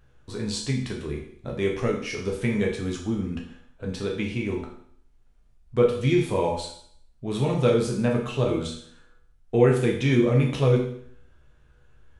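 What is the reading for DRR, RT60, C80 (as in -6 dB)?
-1.5 dB, 0.60 s, 9.5 dB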